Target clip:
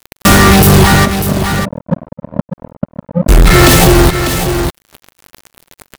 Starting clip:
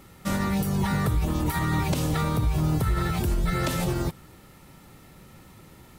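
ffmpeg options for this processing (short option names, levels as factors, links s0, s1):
-filter_complex "[0:a]acompressor=threshold=0.0398:ratio=20,asplit=3[s0][s1][s2];[s0]afade=t=out:st=1.04:d=0.02[s3];[s1]asuperpass=centerf=200:order=12:qfactor=2.4,afade=t=in:st=1.04:d=0.02,afade=t=out:st=3.28:d=0.02[s4];[s2]afade=t=in:st=3.28:d=0.02[s5];[s3][s4][s5]amix=inputs=3:normalize=0,aecho=1:1:2.7:0.44,acrusher=bits=5:mix=0:aa=0.5,volume=47.3,asoftclip=hard,volume=0.0211,aecho=1:1:596:0.251,alimiter=level_in=63.1:limit=0.891:release=50:level=0:latency=1,volume=0.891"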